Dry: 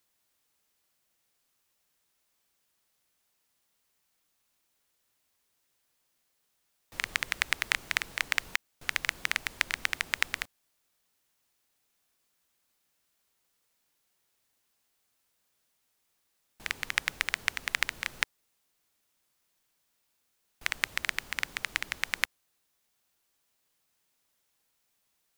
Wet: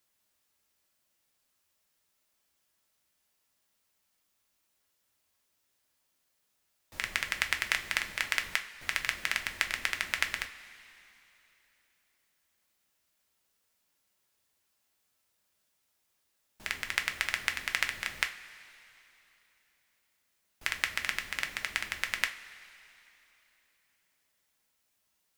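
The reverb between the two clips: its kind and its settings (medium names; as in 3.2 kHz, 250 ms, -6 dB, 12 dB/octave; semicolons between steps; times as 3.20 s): two-slope reverb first 0.28 s, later 3.2 s, from -18 dB, DRR 4.5 dB; trim -2 dB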